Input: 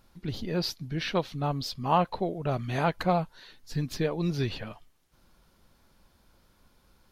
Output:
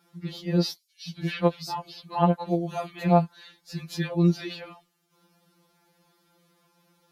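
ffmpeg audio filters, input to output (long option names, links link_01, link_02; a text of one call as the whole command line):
ffmpeg -i in.wav -filter_complex "[0:a]highpass=110,asettb=1/sr,asplit=3[link_01][link_02][link_03];[link_01]atrim=end=0.764[link_04];[link_02]atrim=start=0.76:end=3.06,asetpts=PTS-STARTPTS,afade=type=in:duration=0.004:curve=qsin,afade=type=out:start_time=2.296:duration=0.004:curve=qsin,acrossover=split=4000[link_05][link_06];[link_05]adelay=280[link_07];[link_07][link_06]amix=inputs=2:normalize=0,atrim=end_sample=101430[link_08];[link_03]atrim=start=3.056[link_09];[link_04][link_08]acrossfade=duration=0.004:curve1=hsin:curve2=qsin[link_10];[link_10][link_09]acrossfade=duration=0.004:curve1=qsin:curve2=hsin,afftfilt=real='re*2.83*eq(mod(b,8),0)':imag='im*2.83*eq(mod(b,8),0)':win_size=2048:overlap=0.75,volume=3dB" out.wav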